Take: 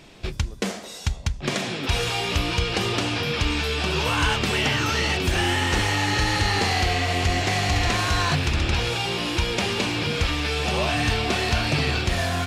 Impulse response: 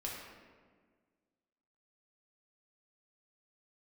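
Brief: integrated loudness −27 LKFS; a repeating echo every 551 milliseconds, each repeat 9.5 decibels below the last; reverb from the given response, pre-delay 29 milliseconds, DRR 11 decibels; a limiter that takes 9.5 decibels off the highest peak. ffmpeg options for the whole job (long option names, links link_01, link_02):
-filter_complex "[0:a]alimiter=limit=-19.5dB:level=0:latency=1,aecho=1:1:551|1102|1653|2204:0.335|0.111|0.0365|0.012,asplit=2[link_01][link_02];[1:a]atrim=start_sample=2205,adelay=29[link_03];[link_02][link_03]afir=irnorm=-1:irlink=0,volume=-12dB[link_04];[link_01][link_04]amix=inputs=2:normalize=0"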